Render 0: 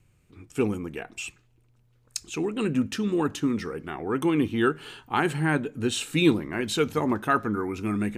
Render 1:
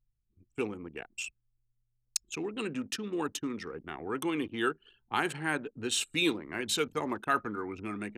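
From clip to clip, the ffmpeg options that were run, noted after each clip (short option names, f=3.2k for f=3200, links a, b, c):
-filter_complex "[0:a]anlmdn=3.98,highshelf=f=2.2k:g=8.5,acrossover=split=270|4200[a][b][c];[a]acompressor=threshold=-37dB:ratio=6[d];[d][b][c]amix=inputs=3:normalize=0,volume=-7dB"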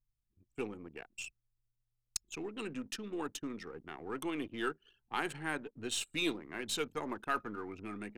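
-af "aeval=exprs='if(lt(val(0),0),0.708*val(0),val(0))':c=same,volume=-4.5dB"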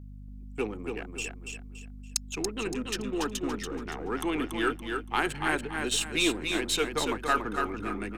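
-filter_complex "[0:a]acrossover=split=220|2100[a][b][c];[a]alimiter=level_in=24.5dB:limit=-24dB:level=0:latency=1,volume=-24.5dB[d];[d][b][c]amix=inputs=3:normalize=0,aeval=exprs='val(0)+0.00282*(sin(2*PI*50*n/s)+sin(2*PI*2*50*n/s)/2+sin(2*PI*3*50*n/s)/3+sin(2*PI*4*50*n/s)/4+sin(2*PI*5*50*n/s)/5)':c=same,aecho=1:1:284|568|852|1136:0.562|0.186|0.0612|0.0202,volume=8dB"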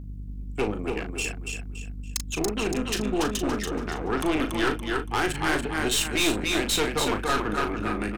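-filter_complex "[0:a]aeval=exprs='val(0)+0.00355*(sin(2*PI*60*n/s)+sin(2*PI*2*60*n/s)/2+sin(2*PI*3*60*n/s)/3+sin(2*PI*4*60*n/s)/4+sin(2*PI*5*60*n/s)/5)':c=same,aeval=exprs='(tanh(25.1*val(0)+0.6)-tanh(0.6))/25.1':c=same,asplit=2[a][b];[b]adelay=38,volume=-8dB[c];[a][c]amix=inputs=2:normalize=0,volume=8.5dB"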